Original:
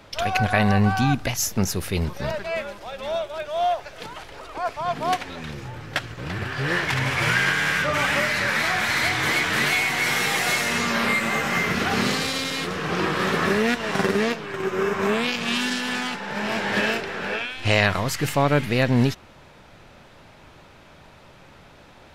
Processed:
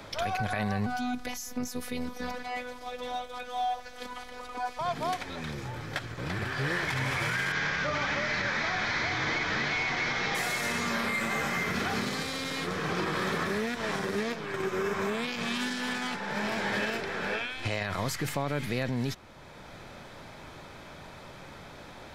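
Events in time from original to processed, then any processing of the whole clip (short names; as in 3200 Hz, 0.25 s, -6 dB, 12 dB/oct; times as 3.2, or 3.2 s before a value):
0.86–4.79 robotiser 248 Hz
7.52–10.35 CVSD 32 kbps
whole clip: notch 2800 Hz, Q 9.8; limiter -16 dBFS; three-band squash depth 40%; gain -5 dB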